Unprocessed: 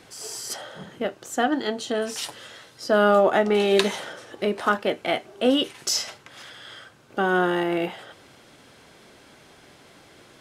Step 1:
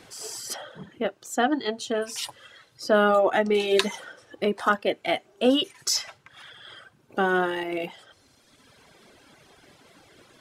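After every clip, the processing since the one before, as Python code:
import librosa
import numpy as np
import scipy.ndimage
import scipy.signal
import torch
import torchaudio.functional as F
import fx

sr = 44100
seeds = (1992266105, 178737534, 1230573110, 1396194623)

y = fx.dereverb_blind(x, sr, rt60_s=1.6)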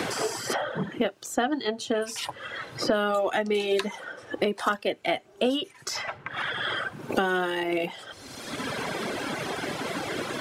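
y = fx.band_squash(x, sr, depth_pct=100)
y = y * 10.0 ** (-1.5 / 20.0)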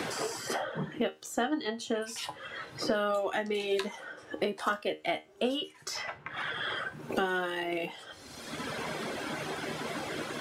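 y = fx.comb_fb(x, sr, f0_hz=77.0, decay_s=0.23, harmonics='all', damping=0.0, mix_pct=70)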